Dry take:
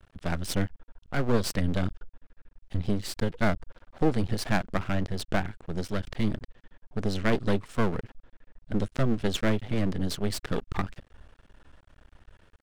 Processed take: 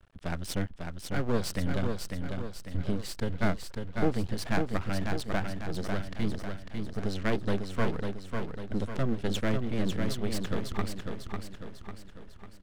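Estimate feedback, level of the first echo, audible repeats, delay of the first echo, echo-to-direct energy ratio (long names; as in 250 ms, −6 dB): 49%, −5.0 dB, 5, 548 ms, −4.0 dB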